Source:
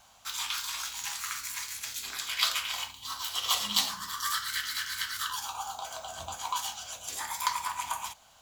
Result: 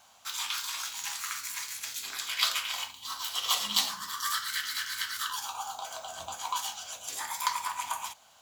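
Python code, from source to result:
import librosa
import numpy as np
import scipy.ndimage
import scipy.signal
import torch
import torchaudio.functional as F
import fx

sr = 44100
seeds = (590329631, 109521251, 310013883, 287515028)

y = fx.highpass(x, sr, hz=200.0, slope=6)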